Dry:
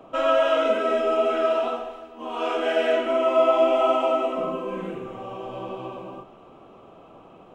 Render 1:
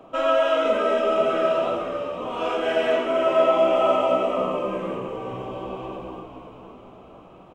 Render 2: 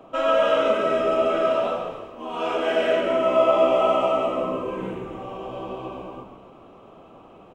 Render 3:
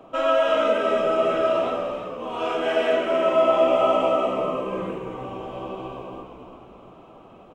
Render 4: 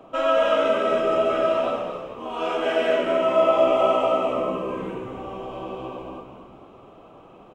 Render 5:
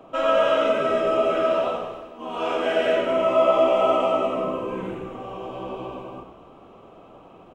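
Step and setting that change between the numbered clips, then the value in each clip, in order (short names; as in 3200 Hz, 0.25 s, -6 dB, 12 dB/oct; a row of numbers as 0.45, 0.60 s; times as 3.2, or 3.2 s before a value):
frequency-shifting echo, time: 505, 137, 341, 222, 91 ms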